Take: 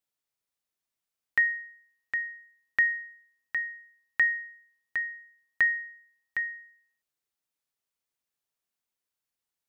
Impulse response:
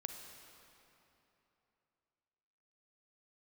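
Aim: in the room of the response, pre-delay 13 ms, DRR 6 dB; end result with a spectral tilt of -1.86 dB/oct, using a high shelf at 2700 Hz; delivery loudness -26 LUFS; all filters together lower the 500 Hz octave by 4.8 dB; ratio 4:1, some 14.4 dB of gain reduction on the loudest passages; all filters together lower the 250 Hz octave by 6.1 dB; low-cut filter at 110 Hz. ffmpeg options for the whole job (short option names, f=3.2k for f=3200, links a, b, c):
-filter_complex "[0:a]highpass=110,equalizer=f=250:t=o:g=-6.5,equalizer=f=500:t=o:g=-5,highshelf=f=2.7k:g=7.5,acompressor=threshold=-35dB:ratio=4,asplit=2[a][b];[1:a]atrim=start_sample=2205,adelay=13[c];[b][c]afir=irnorm=-1:irlink=0,volume=-4dB[d];[a][d]amix=inputs=2:normalize=0,volume=13dB"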